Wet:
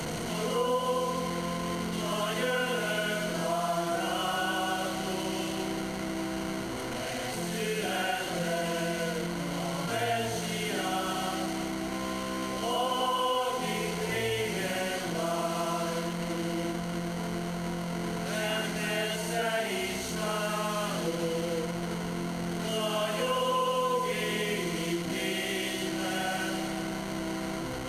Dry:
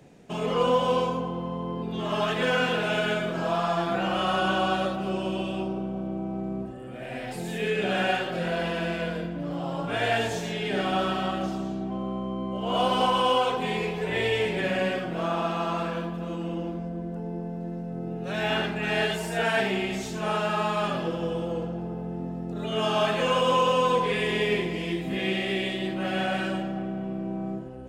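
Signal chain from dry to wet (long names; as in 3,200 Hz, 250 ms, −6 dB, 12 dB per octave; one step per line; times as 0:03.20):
linear delta modulator 64 kbit/s, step −27 dBFS
EQ curve with evenly spaced ripples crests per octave 1.9, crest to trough 8 dB
downward compressor 2.5 to 1, threshold −26 dBFS, peak gain reduction 8 dB
level −2 dB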